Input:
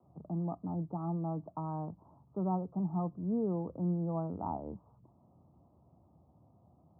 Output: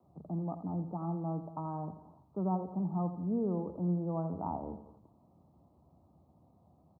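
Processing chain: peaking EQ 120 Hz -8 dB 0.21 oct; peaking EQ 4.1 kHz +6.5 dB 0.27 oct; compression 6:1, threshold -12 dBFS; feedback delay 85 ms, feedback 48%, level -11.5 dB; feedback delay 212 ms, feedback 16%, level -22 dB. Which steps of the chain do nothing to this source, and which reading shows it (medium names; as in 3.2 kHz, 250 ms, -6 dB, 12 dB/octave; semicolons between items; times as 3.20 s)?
peaking EQ 4.1 kHz: input has nothing above 1 kHz; compression, threshold -12 dBFS: peak at its input -23.0 dBFS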